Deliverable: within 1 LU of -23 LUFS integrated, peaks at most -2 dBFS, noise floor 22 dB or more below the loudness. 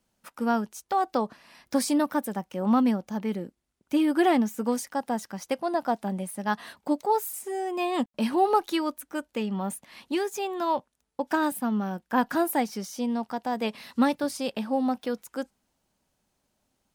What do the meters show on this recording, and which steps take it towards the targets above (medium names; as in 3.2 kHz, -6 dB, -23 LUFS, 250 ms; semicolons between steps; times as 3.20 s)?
loudness -28.0 LUFS; peak level -11.0 dBFS; loudness target -23.0 LUFS
-> trim +5 dB